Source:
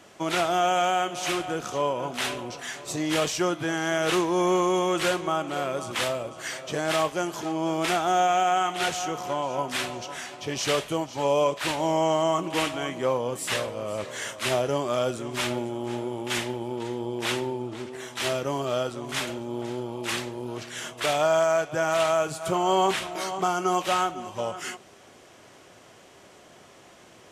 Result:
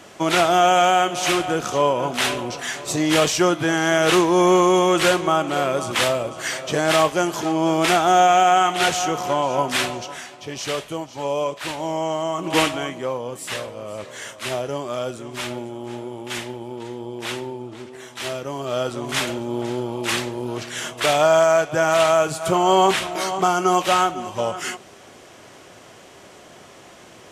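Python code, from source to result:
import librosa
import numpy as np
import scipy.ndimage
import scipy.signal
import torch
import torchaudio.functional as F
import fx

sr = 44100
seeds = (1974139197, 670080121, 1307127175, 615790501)

y = fx.gain(x, sr, db=fx.line((9.84, 7.5), (10.34, -1.0), (12.37, -1.0), (12.54, 9.0), (13.07, -1.0), (18.55, -1.0), (18.95, 6.5)))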